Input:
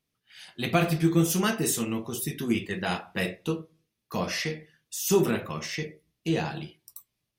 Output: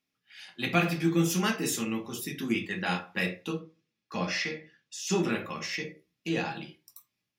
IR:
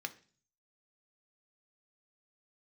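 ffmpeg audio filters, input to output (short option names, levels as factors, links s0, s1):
-filter_complex "[0:a]asettb=1/sr,asplit=3[s0][s1][s2];[s0]atrim=end=3.594[s3];[s1]atrim=start=3.59:end=5.31,asetpts=PTS-STARTPTS,afade=t=in:d=0.004:c=qsin,afade=t=out:st=1.716:d=0.004:c=qsin,lowpass=6800[s4];[s2]atrim=start=5.306[s5];[s3][s4]acrossfade=d=0.004:c1=hsin:c2=qsin[s6];[s6][s5]acrossfade=d=0.004:c1=qsin:c2=hsin[s7];[1:a]atrim=start_sample=2205,atrim=end_sample=3969[s8];[s7][s8]afir=irnorm=-1:irlink=0"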